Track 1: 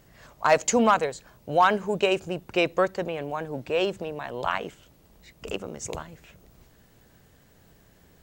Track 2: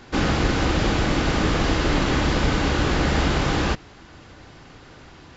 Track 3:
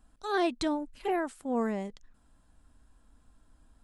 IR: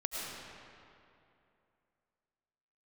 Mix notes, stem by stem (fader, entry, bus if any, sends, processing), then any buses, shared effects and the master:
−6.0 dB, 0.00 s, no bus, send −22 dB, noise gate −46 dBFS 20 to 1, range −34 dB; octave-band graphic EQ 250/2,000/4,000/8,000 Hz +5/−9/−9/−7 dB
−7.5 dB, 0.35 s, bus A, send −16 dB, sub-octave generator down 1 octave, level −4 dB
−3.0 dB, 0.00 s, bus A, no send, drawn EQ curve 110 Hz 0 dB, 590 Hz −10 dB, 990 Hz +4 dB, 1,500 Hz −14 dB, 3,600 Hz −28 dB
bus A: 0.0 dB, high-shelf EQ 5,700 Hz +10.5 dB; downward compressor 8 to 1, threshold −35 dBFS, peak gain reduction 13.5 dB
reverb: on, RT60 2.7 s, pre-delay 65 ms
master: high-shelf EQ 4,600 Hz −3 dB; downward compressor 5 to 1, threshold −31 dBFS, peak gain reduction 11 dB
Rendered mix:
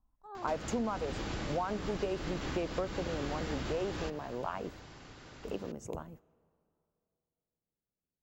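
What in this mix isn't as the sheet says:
stem 2: missing sub-octave generator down 1 octave, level −4 dB
stem 3 −3.0 dB → −12.0 dB
reverb return −7.0 dB

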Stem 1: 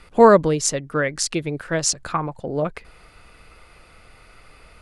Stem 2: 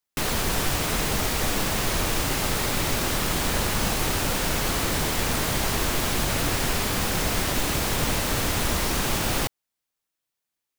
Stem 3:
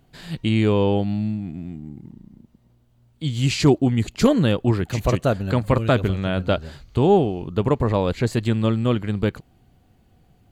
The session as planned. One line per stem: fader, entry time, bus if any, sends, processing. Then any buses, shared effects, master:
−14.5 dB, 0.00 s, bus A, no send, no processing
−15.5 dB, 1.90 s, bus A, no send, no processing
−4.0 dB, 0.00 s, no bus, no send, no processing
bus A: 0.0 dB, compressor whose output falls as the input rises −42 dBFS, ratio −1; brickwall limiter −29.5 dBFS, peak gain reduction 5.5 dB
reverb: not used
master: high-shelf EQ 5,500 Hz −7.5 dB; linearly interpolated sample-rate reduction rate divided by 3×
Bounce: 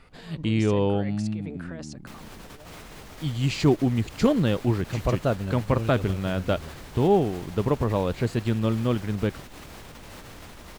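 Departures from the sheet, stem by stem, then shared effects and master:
stem 2 −15.5 dB → −8.5 dB
master: missing linearly interpolated sample-rate reduction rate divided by 3×

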